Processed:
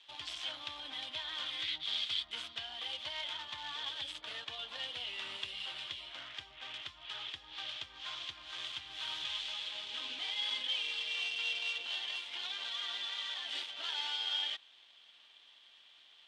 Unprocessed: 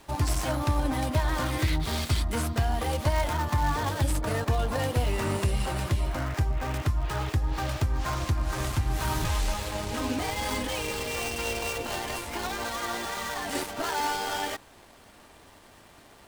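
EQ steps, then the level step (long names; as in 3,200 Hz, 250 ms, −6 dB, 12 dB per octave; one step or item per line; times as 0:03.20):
resonant band-pass 3,300 Hz, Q 6.6
high-frequency loss of the air 55 metres
+8.0 dB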